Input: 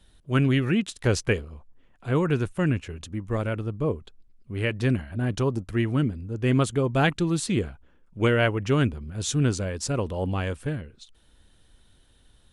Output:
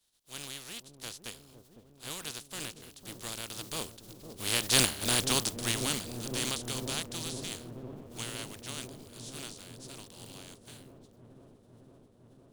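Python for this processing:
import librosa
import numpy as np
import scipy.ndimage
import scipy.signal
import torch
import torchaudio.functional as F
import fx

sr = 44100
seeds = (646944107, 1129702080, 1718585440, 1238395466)

y = fx.spec_flatten(x, sr, power=0.31)
y = fx.doppler_pass(y, sr, speed_mps=8, closest_m=3.3, pass_at_s=4.93)
y = fx.high_shelf_res(y, sr, hz=2800.0, db=6.5, q=1.5)
y = fx.echo_wet_lowpass(y, sr, ms=505, feedback_pct=81, hz=510.0, wet_db=-6.0)
y = y * 10.0 ** (-4.0 / 20.0)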